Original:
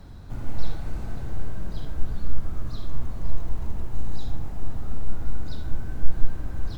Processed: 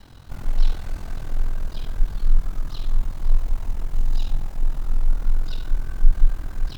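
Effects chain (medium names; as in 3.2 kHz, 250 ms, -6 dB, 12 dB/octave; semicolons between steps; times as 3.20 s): harmony voices -5 st -4 dB; ring modulator 21 Hz; tape noise reduction on one side only encoder only; trim -2 dB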